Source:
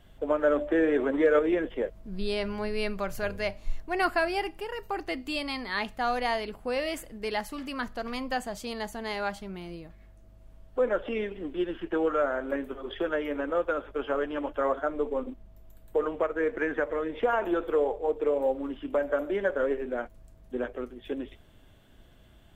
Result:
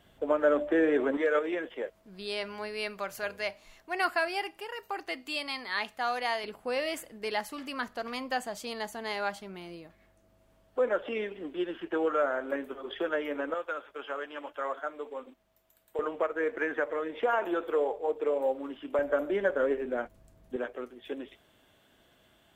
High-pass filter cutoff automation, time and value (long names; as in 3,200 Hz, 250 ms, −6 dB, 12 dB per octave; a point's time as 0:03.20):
high-pass filter 6 dB per octave
180 Hz
from 0:01.17 750 Hz
from 0:06.44 340 Hz
from 0:13.54 1,400 Hz
from 0:15.99 420 Hz
from 0:18.99 100 Hz
from 0:20.56 440 Hz